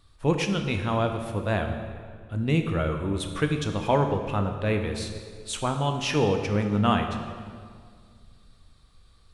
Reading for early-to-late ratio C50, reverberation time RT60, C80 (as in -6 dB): 6.5 dB, 2.0 s, 8.0 dB